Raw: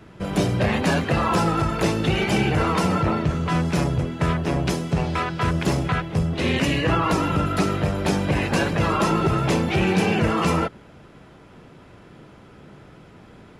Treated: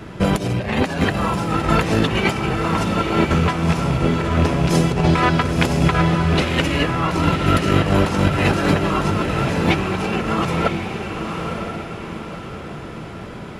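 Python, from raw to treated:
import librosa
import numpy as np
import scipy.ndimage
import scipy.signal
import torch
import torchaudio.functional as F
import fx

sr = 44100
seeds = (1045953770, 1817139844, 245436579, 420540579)

p1 = fx.rattle_buzz(x, sr, strikes_db=-22.0, level_db=-28.0)
p2 = fx.over_compress(p1, sr, threshold_db=-25.0, ratio=-0.5)
p3 = p2 + fx.echo_diffused(p2, sr, ms=966, feedback_pct=43, wet_db=-5, dry=0)
y = F.gain(torch.from_numpy(p3), 6.5).numpy()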